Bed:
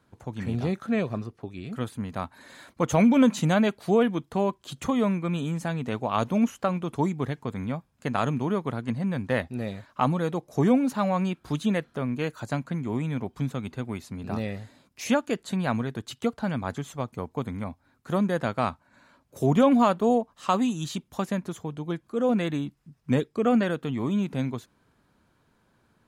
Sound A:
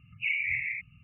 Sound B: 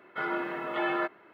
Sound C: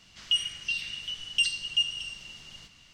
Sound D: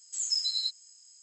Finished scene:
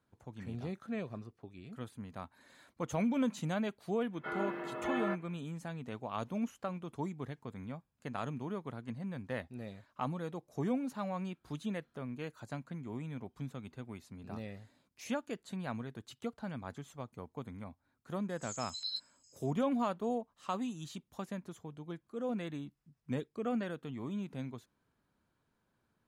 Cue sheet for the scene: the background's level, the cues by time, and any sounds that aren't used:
bed -13 dB
4.08 s: add B -9 dB, fades 0.10 s + bass shelf 480 Hz +7 dB
18.29 s: add D -7 dB + stepped phaser 7.4 Hz 940–6300 Hz
not used: A, C

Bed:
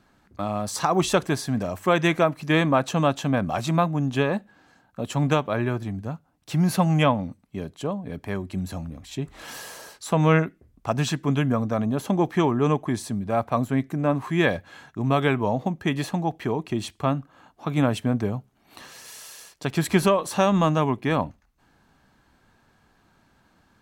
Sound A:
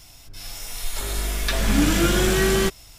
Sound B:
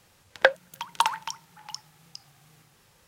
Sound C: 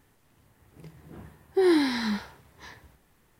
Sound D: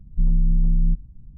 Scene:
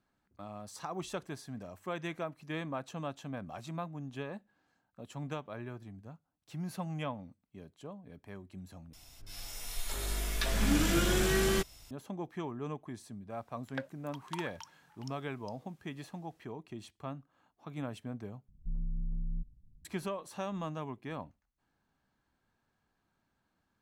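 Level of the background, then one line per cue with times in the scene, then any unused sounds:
bed -18 dB
8.93 s: replace with A -9 dB
13.33 s: add B -15 dB + peak limiter -9.5 dBFS
18.48 s: replace with D -17.5 dB
not used: C

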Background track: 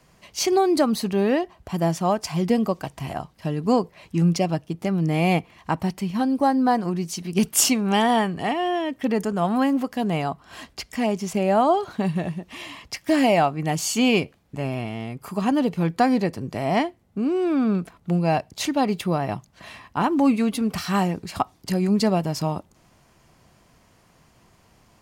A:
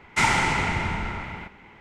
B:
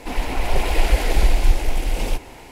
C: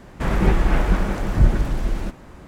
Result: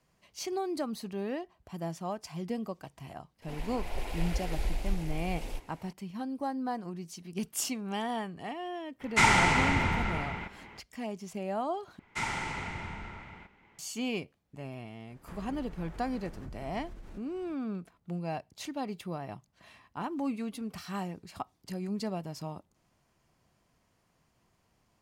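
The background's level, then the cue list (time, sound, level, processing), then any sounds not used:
background track -14.5 dB
3.42 s: add B -16 dB
9.00 s: add A -1.5 dB
11.99 s: replace with A -13 dB
15.08 s: add C -18 dB + compression 5:1, threshold -24 dBFS

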